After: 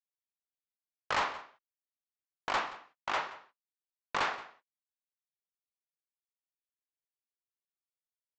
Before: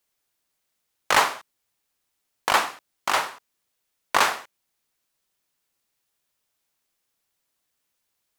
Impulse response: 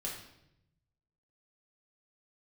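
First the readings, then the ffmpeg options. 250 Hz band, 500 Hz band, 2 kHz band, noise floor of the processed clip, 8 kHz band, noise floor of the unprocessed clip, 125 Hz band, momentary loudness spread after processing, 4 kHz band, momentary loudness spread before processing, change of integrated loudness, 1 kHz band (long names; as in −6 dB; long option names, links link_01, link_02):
−9.5 dB, −10.5 dB, −11.0 dB, below −85 dBFS, −19.5 dB, −78 dBFS, −7.5 dB, 13 LU, −12.5 dB, 14 LU, −11.5 dB, −10.5 dB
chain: -filter_complex "[0:a]agate=range=-28dB:threshold=-34dB:ratio=16:detection=peak,lowpass=3600,aresample=16000,asoftclip=type=hard:threshold=-16.5dB,aresample=44100,asplit=2[link_01][link_02];[link_02]adelay=174.9,volume=-17dB,highshelf=frequency=4000:gain=-3.94[link_03];[link_01][link_03]amix=inputs=2:normalize=0,volume=-8.5dB"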